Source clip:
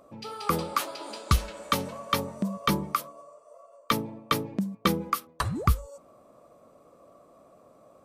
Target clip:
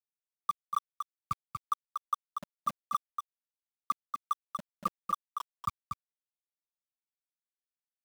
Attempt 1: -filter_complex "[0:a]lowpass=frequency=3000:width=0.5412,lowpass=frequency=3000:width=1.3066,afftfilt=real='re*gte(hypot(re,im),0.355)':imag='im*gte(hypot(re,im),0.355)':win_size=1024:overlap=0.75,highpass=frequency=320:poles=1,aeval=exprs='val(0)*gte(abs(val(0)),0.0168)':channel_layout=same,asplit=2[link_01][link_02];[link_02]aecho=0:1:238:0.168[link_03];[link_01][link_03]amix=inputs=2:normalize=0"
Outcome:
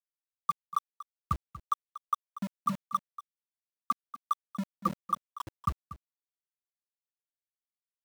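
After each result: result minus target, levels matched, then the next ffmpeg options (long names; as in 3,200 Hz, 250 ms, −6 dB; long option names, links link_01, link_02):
250 Hz band +10.0 dB; echo-to-direct −9.5 dB
-filter_complex "[0:a]lowpass=frequency=3000:width=0.5412,lowpass=frequency=3000:width=1.3066,afftfilt=real='re*gte(hypot(re,im),0.355)':imag='im*gte(hypot(re,im),0.355)':win_size=1024:overlap=0.75,highpass=frequency=980:poles=1,aeval=exprs='val(0)*gte(abs(val(0)),0.0168)':channel_layout=same,asplit=2[link_01][link_02];[link_02]aecho=0:1:238:0.168[link_03];[link_01][link_03]amix=inputs=2:normalize=0"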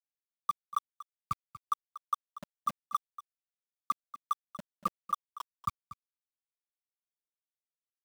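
echo-to-direct −9.5 dB
-filter_complex "[0:a]lowpass=frequency=3000:width=0.5412,lowpass=frequency=3000:width=1.3066,afftfilt=real='re*gte(hypot(re,im),0.355)':imag='im*gte(hypot(re,im),0.355)':win_size=1024:overlap=0.75,highpass=frequency=980:poles=1,aeval=exprs='val(0)*gte(abs(val(0)),0.0168)':channel_layout=same,asplit=2[link_01][link_02];[link_02]aecho=0:1:238:0.501[link_03];[link_01][link_03]amix=inputs=2:normalize=0"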